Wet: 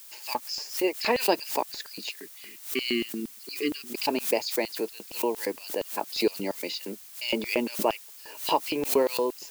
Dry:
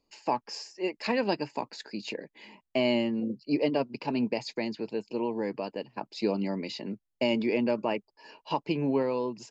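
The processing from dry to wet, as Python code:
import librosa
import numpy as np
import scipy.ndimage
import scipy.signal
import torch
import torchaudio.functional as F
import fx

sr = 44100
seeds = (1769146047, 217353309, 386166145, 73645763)

y = fx.spec_erase(x, sr, start_s=2.1, length_s=1.78, low_hz=440.0, high_hz=1100.0)
y = fx.filter_lfo_highpass(y, sr, shape='square', hz=4.3, low_hz=390.0, high_hz=3700.0, q=1.1)
y = fx.dmg_noise_colour(y, sr, seeds[0], colour='blue', level_db=-52.0)
y = fx.pre_swell(y, sr, db_per_s=140.0)
y = y * 10.0 ** (4.5 / 20.0)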